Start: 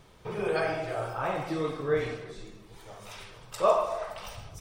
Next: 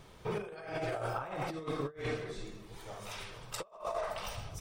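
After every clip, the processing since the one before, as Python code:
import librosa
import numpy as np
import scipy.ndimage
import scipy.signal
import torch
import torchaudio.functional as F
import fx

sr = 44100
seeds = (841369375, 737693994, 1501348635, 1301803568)

y = fx.over_compress(x, sr, threshold_db=-34.0, ratio=-0.5)
y = F.gain(torch.from_numpy(y), -3.5).numpy()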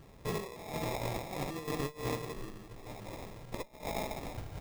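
y = fx.lower_of_two(x, sr, delay_ms=0.41)
y = fx.sample_hold(y, sr, seeds[0], rate_hz=1500.0, jitter_pct=0)
y = F.gain(torch.from_numpy(y), 1.5).numpy()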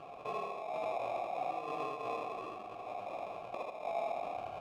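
y = fx.vowel_filter(x, sr, vowel='a')
y = fx.echo_feedback(y, sr, ms=80, feedback_pct=29, wet_db=-4.0)
y = fx.env_flatten(y, sr, amount_pct=50)
y = F.gain(torch.from_numpy(y), 5.0).numpy()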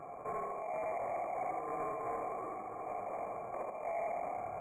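y = 10.0 ** (-35.0 / 20.0) * np.tanh(x / 10.0 ** (-35.0 / 20.0))
y = fx.brickwall_bandstop(y, sr, low_hz=2400.0, high_hz=6600.0)
y = y + 10.0 ** (-10.0 / 20.0) * np.pad(y, (int(1095 * sr / 1000.0), 0))[:len(y)]
y = F.gain(torch.from_numpy(y), 2.5).numpy()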